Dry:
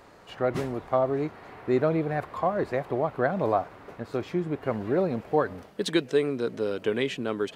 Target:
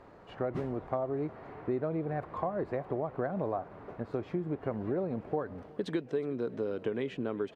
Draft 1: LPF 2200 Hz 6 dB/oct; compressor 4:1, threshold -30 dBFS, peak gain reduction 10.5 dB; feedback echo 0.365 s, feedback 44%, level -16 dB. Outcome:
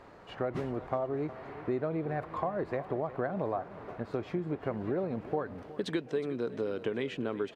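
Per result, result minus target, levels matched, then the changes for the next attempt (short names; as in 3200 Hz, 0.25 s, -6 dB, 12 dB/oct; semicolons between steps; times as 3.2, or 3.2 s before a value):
echo-to-direct +6.5 dB; 2000 Hz band +3.0 dB
change: feedback echo 0.365 s, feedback 44%, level -22.5 dB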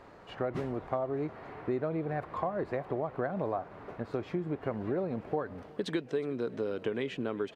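2000 Hz band +3.0 dB
change: LPF 1000 Hz 6 dB/oct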